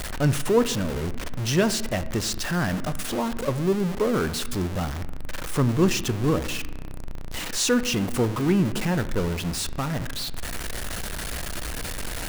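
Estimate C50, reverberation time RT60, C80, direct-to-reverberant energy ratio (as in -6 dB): 15.0 dB, 1.2 s, 17.0 dB, 12.0 dB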